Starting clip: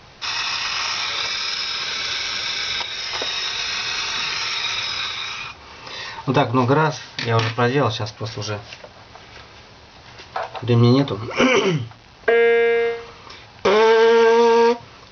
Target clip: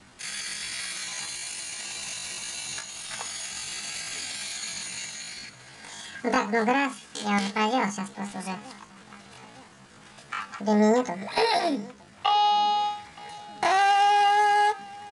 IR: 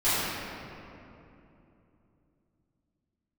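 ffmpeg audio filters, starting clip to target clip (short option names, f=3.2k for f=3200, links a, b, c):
-af "adynamicequalizer=threshold=0.0158:dfrequency=880:dqfactor=4.2:tfrequency=880:tqfactor=4.2:attack=5:release=100:ratio=0.375:range=2:mode=cutabove:tftype=bell,aecho=1:1:912|1824|2736|3648:0.0794|0.0421|0.0223|0.0118,asetrate=78577,aresample=44100,atempo=0.561231,highshelf=f=4.5k:g=-7,volume=-6dB"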